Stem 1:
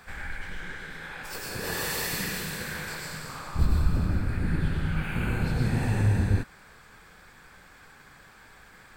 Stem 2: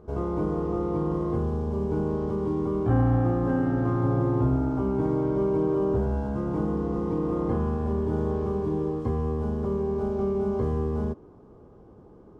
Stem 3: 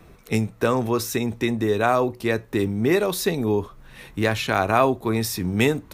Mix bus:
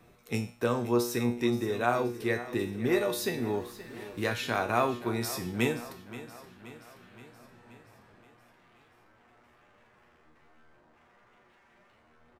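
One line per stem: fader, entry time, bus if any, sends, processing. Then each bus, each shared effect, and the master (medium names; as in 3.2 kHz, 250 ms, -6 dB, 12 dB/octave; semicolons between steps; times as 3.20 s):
-15.5 dB, 1.80 s, no send, no echo send, Bessel high-pass 330 Hz, order 2; treble shelf 6.1 kHz -10.5 dB
-10.5 dB, 1.30 s, no send, no echo send, high-pass 150 Hz 6 dB/octave; wavefolder -34 dBFS; flange 1.4 Hz, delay 8.9 ms, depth 4.5 ms, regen +50%
+2.0 dB, 0.00 s, no send, echo send -15.5 dB, bass shelf 71 Hz -11 dB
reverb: none
echo: feedback delay 525 ms, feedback 58%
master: feedback comb 120 Hz, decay 0.46 s, harmonics all, mix 80%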